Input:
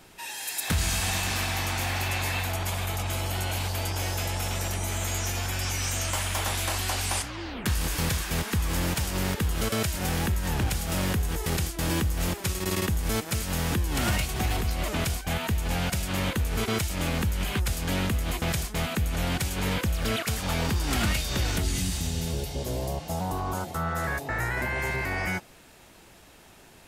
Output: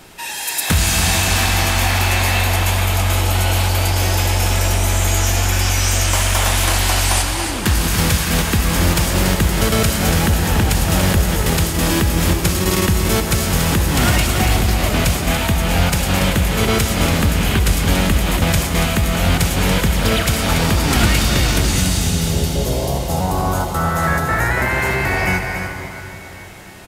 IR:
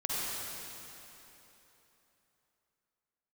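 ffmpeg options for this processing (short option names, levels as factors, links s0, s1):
-filter_complex "[0:a]aecho=1:1:285:0.398,asplit=2[s0][s1];[1:a]atrim=start_sample=2205,asetrate=35280,aresample=44100[s2];[s1][s2]afir=irnorm=-1:irlink=0,volume=0.266[s3];[s0][s3]amix=inputs=2:normalize=0,volume=2.51"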